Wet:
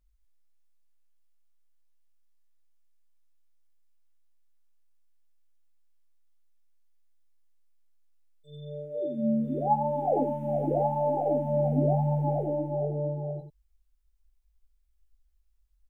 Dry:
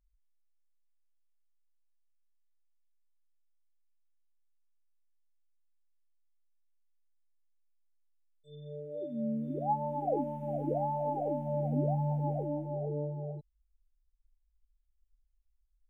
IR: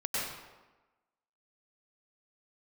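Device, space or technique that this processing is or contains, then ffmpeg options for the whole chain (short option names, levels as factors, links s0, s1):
slapback doubling: -filter_complex "[0:a]asplit=3[s0][s1][s2];[s1]adelay=19,volume=0.531[s3];[s2]adelay=90,volume=0.447[s4];[s0][s3][s4]amix=inputs=3:normalize=0,volume=1.58"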